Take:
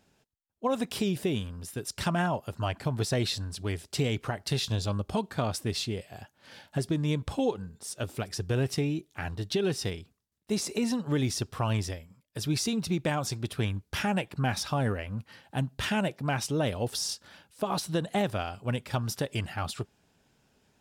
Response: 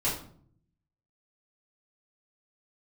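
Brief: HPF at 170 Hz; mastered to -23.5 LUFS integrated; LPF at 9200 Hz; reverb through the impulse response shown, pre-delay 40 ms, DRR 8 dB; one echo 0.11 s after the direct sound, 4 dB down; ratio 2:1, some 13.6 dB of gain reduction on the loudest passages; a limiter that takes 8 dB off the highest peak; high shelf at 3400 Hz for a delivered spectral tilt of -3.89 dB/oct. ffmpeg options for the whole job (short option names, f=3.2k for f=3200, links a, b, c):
-filter_complex "[0:a]highpass=170,lowpass=9.2k,highshelf=f=3.4k:g=6,acompressor=threshold=-50dB:ratio=2,alimiter=level_in=10dB:limit=-24dB:level=0:latency=1,volume=-10dB,aecho=1:1:110:0.631,asplit=2[a][b];[1:a]atrim=start_sample=2205,adelay=40[c];[b][c]afir=irnorm=-1:irlink=0,volume=-16.5dB[d];[a][d]amix=inputs=2:normalize=0,volume=20dB"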